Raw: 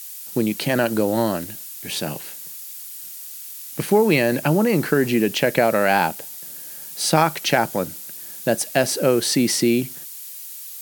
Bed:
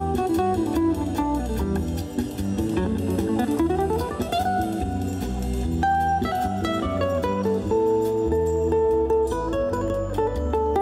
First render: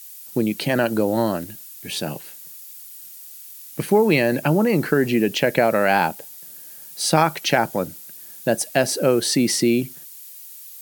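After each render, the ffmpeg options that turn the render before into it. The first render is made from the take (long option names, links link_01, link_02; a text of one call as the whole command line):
ffmpeg -i in.wav -af "afftdn=noise_reduction=6:noise_floor=-36" out.wav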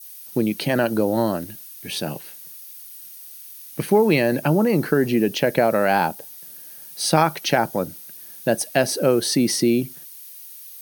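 ffmpeg -i in.wav -af "bandreject=frequency=7400:width=5.1,adynamicequalizer=threshold=0.0141:dfrequency=2300:dqfactor=1.2:tfrequency=2300:tqfactor=1.2:attack=5:release=100:ratio=0.375:range=2.5:mode=cutabove:tftype=bell" out.wav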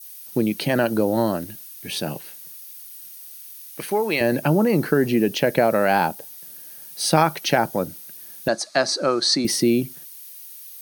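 ffmpeg -i in.wav -filter_complex "[0:a]asettb=1/sr,asplit=3[link_01][link_02][link_03];[link_01]atrim=end=3.584[link_04];[link_02]atrim=start=3.58:end=4.21,asetpts=PTS-STARTPTS,afade=type=in:duration=0.004:curve=qsin,afade=type=out:start_time=0.626:duration=0.004:curve=qsin,highpass=frequency=730:poles=1[link_05];[link_03]atrim=start=4.206[link_06];[link_04][link_05]acrossfade=duration=0.004:curve1=hsin:curve2=qsin[link_07];[link_07][link_06]acrossfade=duration=0.004:curve1=qsin:curve2=hsin,asettb=1/sr,asplit=3[link_08][link_09][link_10];[link_08]atrim=end=8.484[link_11];[link_09]atrim=start=8.48:end=9.45,asetpts=PTS-STARTPTS,afade=type=in:duration=0.004:curve=qsin,afade=type=out:start_time=0.966:duration=0.004:curve=qsin,highpass=230,equalizer=frequency=240:width_type=q:width=4:gain=-4,equalizer=frequency=450:width_type=q:width=4:gain=-9,equalizer=frequency=1200:width_type=q:width=4:gain=10,equalizer=frequency=2900:width_type=q:width=4:gain=-9,equalizer=frequency=4300:width_type=q:width=4:gain=10,equalizer=frequency=7300:width_type=q:width=4:gain=4,lowpass=frequency=7400:width=0.5412,lowpass=frequency=7400:width=1.3066[link_12];[link_10]atrim=start=9.446[link_13];[link_11][link_12]acrossfade=duration=0.004:curve1=hsin:curve2=qsin[link_14];[link_14][link_13]acrossfade=duration=0.004:curve1=qsin:curve2=hsin" out.wav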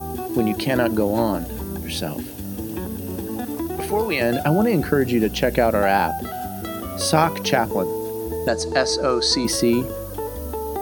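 ffmpeg -i in.wav -i bed.wav -filter_complex "[1:a]volume=-5.5dB[link_01];[0:a][link_01]amix=inputs=2:normalize=0" out.wav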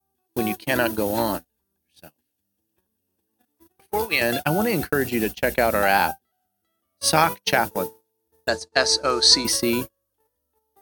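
ffmpeg -i in.wav -af "agate=range=-45dB:threshold=-21dB:ratio=16:detection=peak,tiltshelf=frequency=970:gain=-6" out.wav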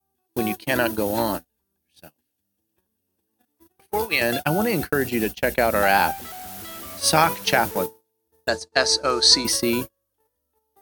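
ffmpeg -i in.wav -filter_complex "[0:a]asettb=1/sr,asplit=3[link_01][link_02][link_03];[link_01]atrim=end=5.764[link_04];[link_02]atrim=start=5.76:end=7.86,asetpts=PTS-STARTPTS,afade=type=in:duration=0.004:curve=qsin,afade=type=out:start_time=2.096:duration=0.004:curve=qsin,aeval=exprs='val(0)+0.5*0.0299*sgn(val(0))':channel_layout=same[link_05];[link_03]atrim=start=7.856[link_06];[link_04][link_05]acrossfade=duration=0.004:curve1=hsin:curve2=qsin[link_07];[link_07][link_06]acrossfade=duration=0.004:curve1=qsin:curve2=hsin" out.wav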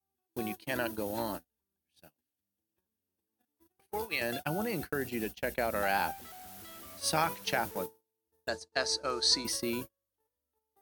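ffmpeg -i in.wav -af "volume=-12dB" out.wav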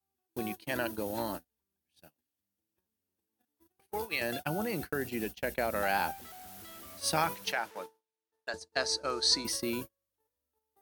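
ffmpeg -i in.wav -filter_complex "[0:a]asettb=1/sr,asplit=3[link_01][link_02][link_03];[link_01]atrim=end=7.524[link_04];[link_02]atrim=start=7.52:end=8.54,asetpts=PTS-STARTPTS,afade=type=in:duration=0.004:curve=qsin,afade=type=out:start_time=1.016:duration=0.004:curve=qsin,bandpass=frequency=1800:width_type=q:width=0.52[link_05];[link_03]atrim=start=8.536[link_06];[link_04][link_05]acrossfade=duration=0.004:curve1=hsin:curve2=qsin[link_07];[link_07][link_06]acrossfade=duration=0.004:curve1=qsin:curve2=hsin" out.wav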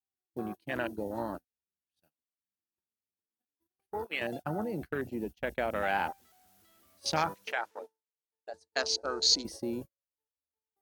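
ffmpeg -i in.wav -af "afwtdn=0.0158,adynamicequalizer=threshold=0.00282:dfrequency=6700:dqfactor=1:tfrequency=6700:tqfactor=1:attack=5:release=100:ratio=0.375:range=2.5:mode=boostabove:tftype=bell" out.wav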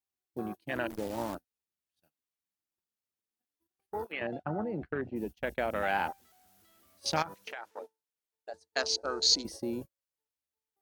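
ffmpeg -i in.wav -filter_complex "[0:a]asettb=1/sr,asplit=3[link_01][link_02][link_03];[link_01]atrim=end=0.904[link_04];[link_02]atrim=start=0.9:end=1.35,asetpts=PTS-STARTPTS,afade=type=in:duration=0.004:curve=qsin,afade=type=out:start_time=0.446:duration=0.004:curve=qsin,acrusher=bits=8:dc=4:mix=0:aa=0.000001[link_05];[link_03]atrim=start=1.346[link_06];[link_04][link_05]acrossfade=duration=0.004:curve1=hsin:curve2=qsin[link_07];[link_07][link_06]acrossfade=duration=0.004:curve1=qsin:curve2=hsin,asplit=3[link_08][link_09][link_10];[link_08]afade=type=out:start_time=4.11:duration=0.02[link_11];[link_09]lowpass=2200,afade=type=in:start_time=4.11:duration=0.02,afade=type=out:start_time=5.15:duration=0.02[link_12];[link_10]afade=type=in:start_time=5.15:duration=0.02[link_13];[link_11][link_12][link_13]amix=inputs=3:normalize=0,asettb=1/sr,asplit=3[link_14][link_15][link_16];[link_14]atrim=end=7.224[link_17];[link_15]atrim=start=7.22:end=7.73,asetpts=PTS-STARTPTS,afade=type=in:duration=0.004:curve=qsin,afade=type=out:start_time=0.506:duration=0.004:curve=qsin,acompressor=threshold=-37dB:ratio=6:attack=3.2:release=140:knee=1:detection=peak[link_18];[link_16]atrim=start=7.726[link_19];[link_17][link_18]acrossfade=duration=0.004:curve1=hsin:curve2=qsin[link_20];[link_20][link_19]acrossfade=duration=0.004:curve1=qsin:curve2=hsin" out.wav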